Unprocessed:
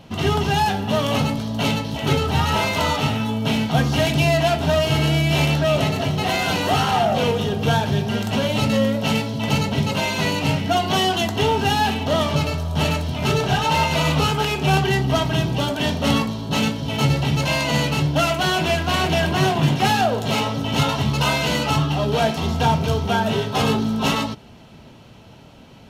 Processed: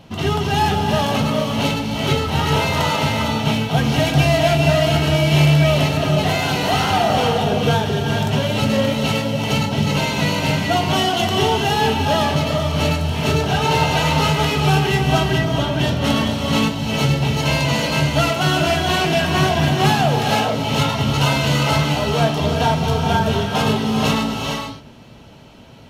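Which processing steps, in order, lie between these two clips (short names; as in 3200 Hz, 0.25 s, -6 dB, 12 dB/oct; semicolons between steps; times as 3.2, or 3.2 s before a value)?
15.38–15.79 LPF 3200 Hz; non-linear reverb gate 0.48 s rising, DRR 2 dB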